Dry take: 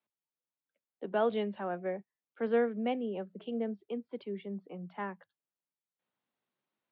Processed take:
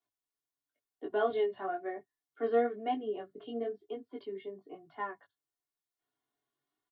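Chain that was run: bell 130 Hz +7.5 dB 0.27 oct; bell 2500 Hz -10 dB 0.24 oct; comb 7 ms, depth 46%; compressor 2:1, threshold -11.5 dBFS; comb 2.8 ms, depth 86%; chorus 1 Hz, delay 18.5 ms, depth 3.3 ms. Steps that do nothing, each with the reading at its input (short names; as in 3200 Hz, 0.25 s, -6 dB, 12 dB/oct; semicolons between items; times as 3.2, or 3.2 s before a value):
compressor, threshold -11.5 dBFS: input peak -19.0 dBFS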